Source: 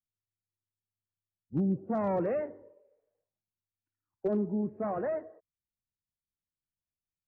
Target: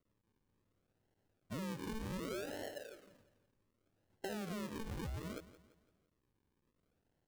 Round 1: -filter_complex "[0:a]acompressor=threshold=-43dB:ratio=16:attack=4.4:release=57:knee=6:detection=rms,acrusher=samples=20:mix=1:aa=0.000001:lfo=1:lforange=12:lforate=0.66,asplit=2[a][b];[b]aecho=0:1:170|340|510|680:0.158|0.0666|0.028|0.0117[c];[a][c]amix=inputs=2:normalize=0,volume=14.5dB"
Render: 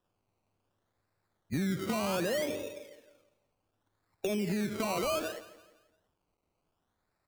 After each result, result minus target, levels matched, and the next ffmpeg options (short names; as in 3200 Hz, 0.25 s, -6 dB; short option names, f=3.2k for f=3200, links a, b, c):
compressor: peak gain reduction -11 dB; decimation with a swept rate: distortion -13 dB
-filter_complex "[0:a]acompressor=threshold=-54.5dB:ratio=16:attack=4.4:release=57:knee=6:detection=rms,acrusher=samples=20:mix=1:aa=0.000001:lfo=1:lforange=12:lforate=0.66,asplit=2[a][b];[b]aecho=0:1:170|340|510|680:0.158|0.0666|0.028|0.0117[c];[a][c]amix=inputs=2:normalize=0,volume=14.5dB"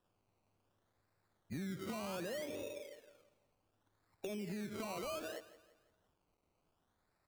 decimation with a swept rate: distortion -13 dB
-filter_complex "[0:a]acompressor=threshold=-54.5dB:ratio=16:attack=4.4:release=57:knee=6:detection=rms,acrusher=samples=52:mix=1:aa=0.000001:lfo=1:lforange=31.2:lforate=0.66,asplit=2[a][b];[b]aecho=0:1:170|340|510|680:0.158|0.0666|0.028|0.0117[c];[a][c]amix=inputs=2:normalize=0,volume=14.5dB"